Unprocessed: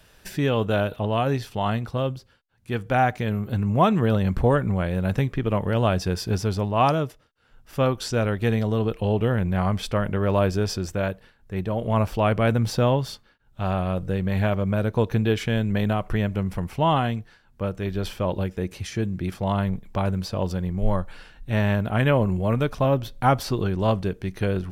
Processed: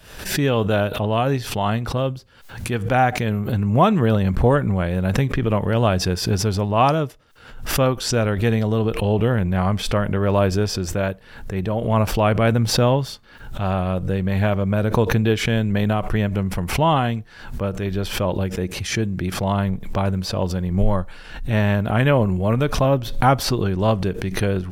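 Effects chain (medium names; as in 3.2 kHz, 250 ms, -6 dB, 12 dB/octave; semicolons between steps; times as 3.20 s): swell ahead of each attack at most 80 dB/s; trim +3 dB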